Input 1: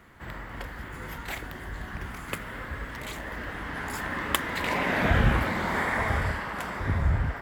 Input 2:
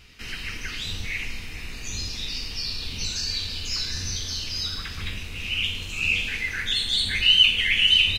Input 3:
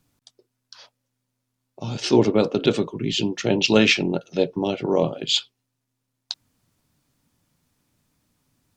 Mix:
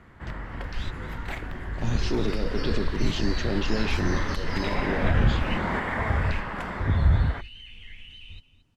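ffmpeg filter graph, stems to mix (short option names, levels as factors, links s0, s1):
-filter_complex "[0:a]volume=1.06[s0];[1:a]alimiter=limit=0.158:level=0:latency=1:release=38,aeval=exprs='sgn(val(0))*max(abs(val(0))-0.00794,0)':c=same,volume=0.531,asplit=2[s1][s2];[s2]volume=0.178[s3];[2:a]alimiter=limit=0.119:level=0:latency=1,volume=0.75,asplit=2[s4][s5];[s5]apad=whole_len=360747[s6];[s1][s6]sidechaingate=range=0.0562:threshold=0.00224:ratio=16:detection=peak[s7];[s0][s4]amix=inputs=2:normalize=0,lowshelf=f=120:g=-10.5,alimiter=limit=0.119:level=0:latency=1:release=217,volume=1[s8];[s3]aecho=0:1:225|450|675:1|0.15|0.0225[s9];[s7][s8][s9]amix=inputs=3:normalize=0,aemphasis=mode=reproduction:type=bsi"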